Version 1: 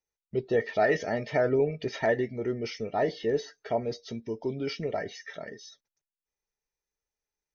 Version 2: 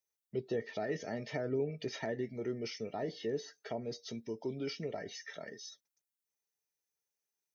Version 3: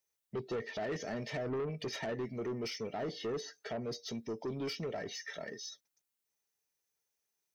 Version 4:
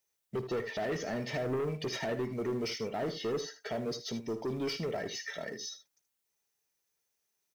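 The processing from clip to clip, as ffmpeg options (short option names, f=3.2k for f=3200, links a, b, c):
-filter_complex "[0:a]highpass=110,highshelf=f=5.3k:g=11.5,acrossover=split=370[a][b];[b]acompressor=threshold=-35dB:ratio=4[c];[a][c]amix=inputs=2:normalize=0,volume=-5.5dB"
-af "asoftclip=type=tanh:threshold=-36.5dB,volume=4dB"
-filter_complex "[0:a]asplit=2[a][b];[b]acrusher=bits=4:mode=log:mix=0:aa=0.000001,volume=-7dB[c];[a][c]amix=inputs=2:normalize=0,aecho=1:1:54|78:0.158|0.237"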